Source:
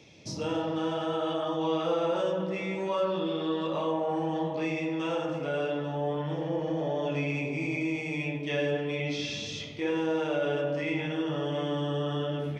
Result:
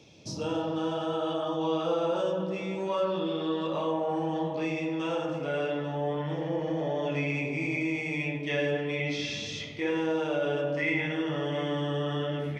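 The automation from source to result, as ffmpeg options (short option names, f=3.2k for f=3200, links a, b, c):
-af "asetnsamples=n=441:p=0,asendcmd='2.9 equalizer g -2;5.49 equalizer g 5.5;10.12 equalizer g -2.5;10.77 equalizer g 9.5',equalizer=f=2k:t=o:w=0.39:g=-9"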